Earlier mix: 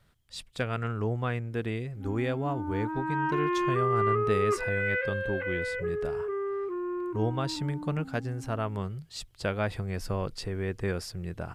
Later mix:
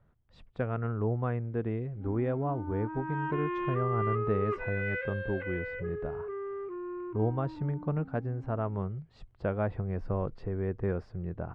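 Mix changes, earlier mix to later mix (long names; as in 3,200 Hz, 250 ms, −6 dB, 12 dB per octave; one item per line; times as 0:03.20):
speech: add low-pass filter 1,100 Hz 12 dB per octave
background −5.5 dB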